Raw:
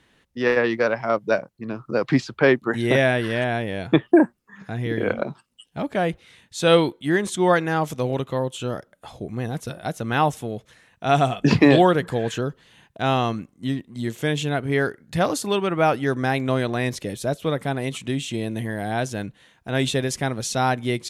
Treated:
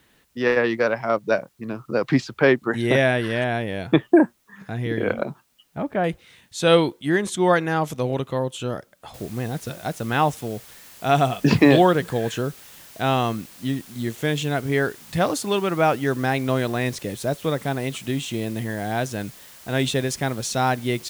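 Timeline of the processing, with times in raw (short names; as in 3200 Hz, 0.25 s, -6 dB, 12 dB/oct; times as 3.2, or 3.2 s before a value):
5.3–6.04 LPF 2000 Hz
9.14 noise floor step -67 dB -46 dB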